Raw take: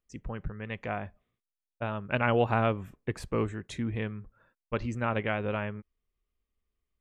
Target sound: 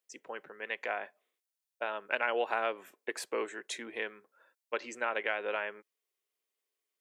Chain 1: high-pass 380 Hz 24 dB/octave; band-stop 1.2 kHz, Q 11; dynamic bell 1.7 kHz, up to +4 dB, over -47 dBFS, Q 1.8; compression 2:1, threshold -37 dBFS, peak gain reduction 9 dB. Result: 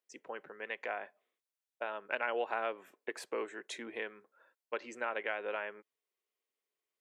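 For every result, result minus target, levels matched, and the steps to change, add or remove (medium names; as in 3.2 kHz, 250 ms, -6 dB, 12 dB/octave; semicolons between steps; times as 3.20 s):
8 kHz band -3.5 dB; compression: peak gain reduction +2.5 dB
add after high-pass: treble shelf 3.6 kHz +7.5 dB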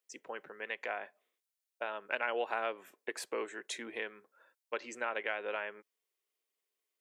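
compression: peak gain reduction +3 dB
change: compression 2:1, threshold -30.5 dBFS, peak gain reduction 6.5 dB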